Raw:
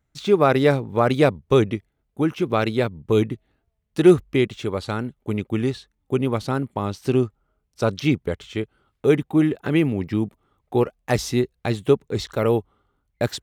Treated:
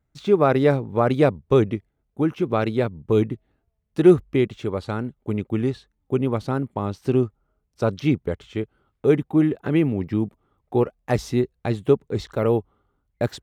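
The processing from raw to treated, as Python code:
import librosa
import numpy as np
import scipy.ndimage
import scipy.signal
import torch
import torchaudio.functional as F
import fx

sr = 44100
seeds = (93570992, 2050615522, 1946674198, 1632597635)

y = fx.high_shelf(x, sr, hz=2000.0, db=-8.5)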